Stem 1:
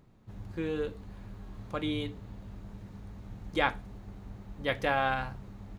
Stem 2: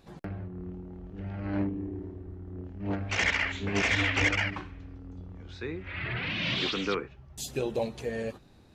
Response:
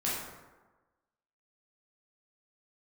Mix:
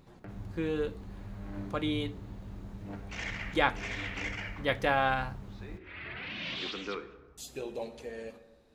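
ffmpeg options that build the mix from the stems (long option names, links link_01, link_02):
-filter_complex "[0:a]volume=1dB,asplit=2[link_01][link_02];[1:a]equalizer=frequency=120:width=1.4:gain=-9.5,volume=-8.5dB,asplit=2[link_03][link_04];[link_04]volume=-15dB[link_05];[link_02]apad=whole_len=385611[link_06];[link_03][link_06]sidechaincompress=threshold=-48dB:ratio=8:attack=16:release=107[link_07];[2:a]atrim=start_sample=2205[link_08];[link_05][link_08]afir=irnorm=-1:irlink=0[link_09];[link_01][link_07][link_09]amix=inputs=3:normalize=0"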